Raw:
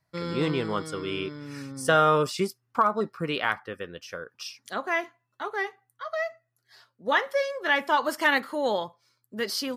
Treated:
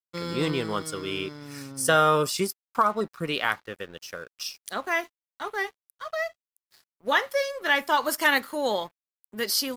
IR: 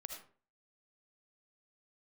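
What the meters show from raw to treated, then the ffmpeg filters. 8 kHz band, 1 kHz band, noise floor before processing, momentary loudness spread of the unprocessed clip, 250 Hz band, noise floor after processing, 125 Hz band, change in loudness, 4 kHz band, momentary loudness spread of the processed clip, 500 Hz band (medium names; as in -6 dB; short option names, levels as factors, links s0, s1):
+8.0 dB, 0.0 dB, -78 dBFS, 16 LU, -0.5 dB, under -85 dBFS, -0.5 dB, +0.5 dB, +3.5 dB, 16 LU, -0.5 dB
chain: -af "aemphasis=mode=production:type=50kf,aeval=exprs='sgn(val(0))*max(abs(val(0))-0.00355,0)':c=same"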